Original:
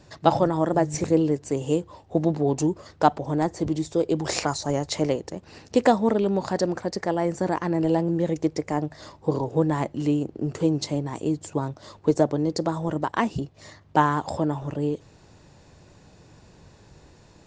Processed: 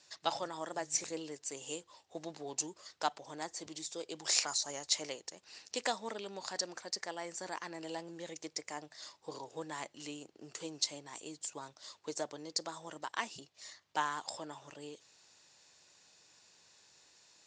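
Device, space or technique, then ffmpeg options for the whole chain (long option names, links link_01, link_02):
piezo pickup straight into a mixer: -af "lowpass=7100,aderivative,volume=3.5dB"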